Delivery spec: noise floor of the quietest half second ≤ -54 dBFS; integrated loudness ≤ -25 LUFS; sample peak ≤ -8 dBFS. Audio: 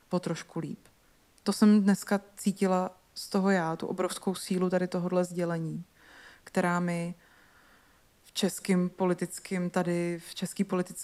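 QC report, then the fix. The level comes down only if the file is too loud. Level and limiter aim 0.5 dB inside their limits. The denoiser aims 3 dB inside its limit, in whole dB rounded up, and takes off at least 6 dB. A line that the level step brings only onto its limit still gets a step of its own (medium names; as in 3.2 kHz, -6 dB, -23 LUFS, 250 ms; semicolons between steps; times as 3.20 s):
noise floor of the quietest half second -63 dBFS: pass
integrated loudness -30.0 LUFS: pass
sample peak -13.0 dBFS: pass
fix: none needed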